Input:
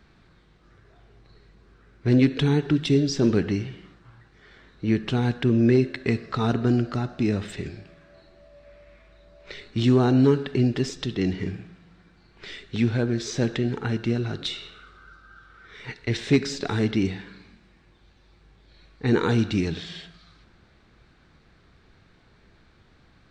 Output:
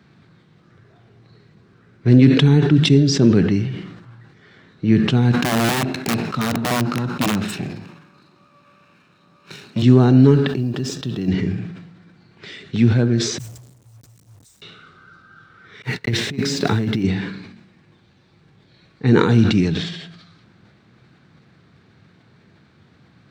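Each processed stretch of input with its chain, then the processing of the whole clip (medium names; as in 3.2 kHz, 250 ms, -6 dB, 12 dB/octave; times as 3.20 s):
5.32–9.82 s: comb filter that takes the minimum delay 0.74 ms + high-pass 150 Hz + integer overflow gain 17 dB
10.48–11.28 s: companding laws mixed up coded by A + compression 3:1, threshold -28 dBFS + band-stop 2.1 kHz, Q 5
13.38–14.62 s: inverse Chebyshev band-stop 200–2900 Hz, stop band 60 dB + hum notches 60/120/180/240/300/360/420 Hz + word length cut 10-bit, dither none
15.82–17.04 s: companding laws mixed up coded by mu + gate -39 dBFS, range -56 dB + compressor with a negative ratio -25 dBFS, ratio -0.5
whole clip: high-pass 110 Hz 24 dB/octave; tone controls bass +8 dB, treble -1 dB; decay stretcher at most 57 dB/s; trim +2.5 dB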